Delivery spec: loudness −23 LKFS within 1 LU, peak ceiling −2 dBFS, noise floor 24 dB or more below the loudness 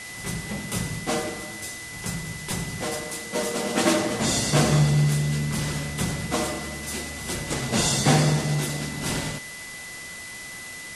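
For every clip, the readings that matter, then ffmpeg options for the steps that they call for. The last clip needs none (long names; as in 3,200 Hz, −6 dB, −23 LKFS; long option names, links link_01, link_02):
interfering tone 2,000 Hz; level of the tone −38 dBFS; background noise floor −38 dBFS; target noise floor −50 dBFS; integrated loudness −25.5 LKFS; sample peak −6.5 dBFS; target loudness −23.0 LKFS
→ -af "bandreject=frequency=2000:width=30"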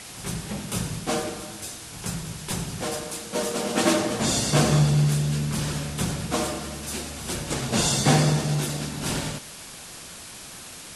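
interfering tone none found; background noise floor −41 dBFS; target noise floor −50 dBFS
→ -af "afftdn=noise_reduction=9:noise_floor=-41"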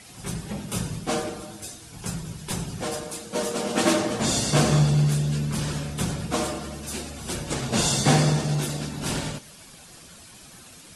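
background noise floor −47 dBFS; target noise floor −50 dBFS
→ -af "afftdn=noise_reduction=6:noise_floor=-47"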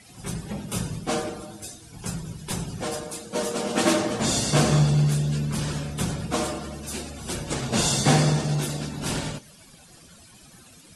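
background noise floor −51 dBFS; integrated loudness −25.5 LKFS; sample peak −6.0 dBFS; target loudness −23.0 LKFS
→ -af "volume=2.5dB"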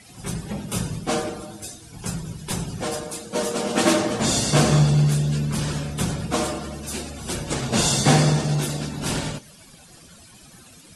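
integrated loudness −23.0 LKFS; sample peak −3.5 dBFS; background noise floor −48 dBFS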